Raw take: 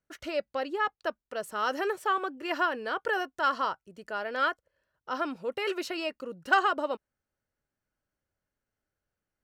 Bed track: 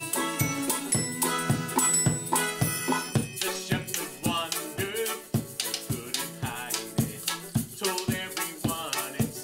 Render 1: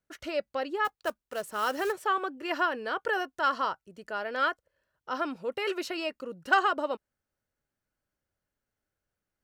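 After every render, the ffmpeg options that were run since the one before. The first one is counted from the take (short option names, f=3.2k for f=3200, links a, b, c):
-filter_complex "[0:a]asplit=3[a][b][c];[a]afade=t=out:st=0.84:d=0.02[d];[b]acrusher=bits=4:mode=log:mix=0:aa=0.000001,afade=t=in:st=0.84:d=0.02,afade=t=out:st=1.91:d=0.02[e];[c]afade=t=in:st=1.91:d=0.02[f];[d][e][f]amix=inputs=3:normalize=0"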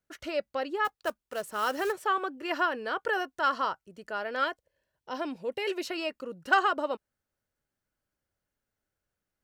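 -filter_complex "[0:a]asettb=1/sr,asplit=3[a][b][c];[a]atrim=end=4.444[d];[b]atrim=start=4.44:end=5.86,asetpts=PTS-STARTPTS,afade=t=in:d=0.004:c=qsin,afade=t=out:st=1.416:d=0.004:c=qsin,equalizer=f=1.3k:t=o:w=0.36:g=-13.5[e];[c]atrim=start=5.856[f];[d][e]acrossfade=d=0.004:c1=hsin:c2=qsin[g];[g][f]acrossfade=d=0.004:c1=qsin:c2=hsin"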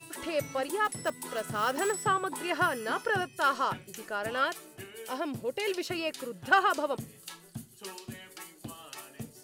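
-filter_complex "[1:a]volume=-14.5dB[a];[0:a][a]amix=inputs=2:normalize=0"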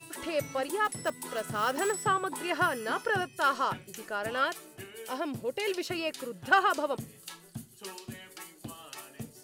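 -af anull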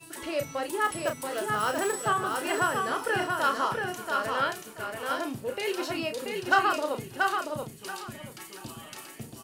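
-filter_complex "[0:a]asplit=2[a][b];[b]adelay=33,volume=-7dB[c];[a][c]amix=inputs=2:normalize=0,aecho=1:1:682|1364|2046:0.631|0.139|0.0305"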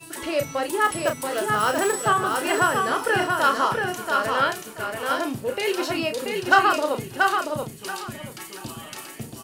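-af "volume=6dB"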